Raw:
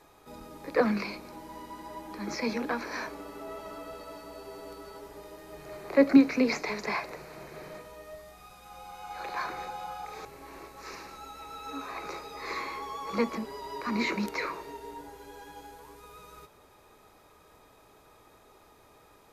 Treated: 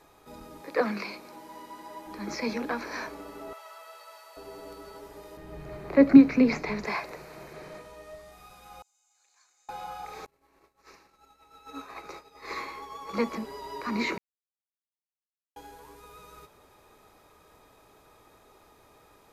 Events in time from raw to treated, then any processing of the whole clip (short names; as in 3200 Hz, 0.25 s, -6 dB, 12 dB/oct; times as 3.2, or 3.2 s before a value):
0.61–2.07 HPF 300 Hz 6 dB/oct
3.53–4.37 Bessel high-pass 950 Hz, order 6
5.37–6.85 tone controls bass +11 dB, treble -7 dB
7.53–8.32 LPF 11000 Hz
8.82–9.69 band-pass 7000 Hz, Q 11
10.26–13.3 expander -35 dBFS
14.18–15.56 mute